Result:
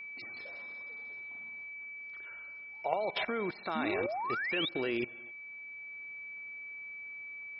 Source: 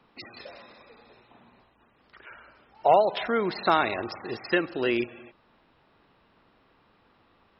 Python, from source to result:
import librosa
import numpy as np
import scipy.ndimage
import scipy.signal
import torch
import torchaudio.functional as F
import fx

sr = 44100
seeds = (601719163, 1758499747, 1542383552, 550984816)

y = x + 10.0 ** (-34.0 / 20.0) * np.sin(2.0 * np.pi * 2300.0 * np.arange(len(x)) / sr)
y = fx.level_steps(y, sr, step_db=16)
y = fx.spec_paint(y, sr, seeds[0], shape='rise', start_s=3.75, length_s=0.94, low_hz=210.0, high_hz=3900.0, level_db=-33.0)
y = fx.rider(y, sr, range_db=3, speed_s=2.0)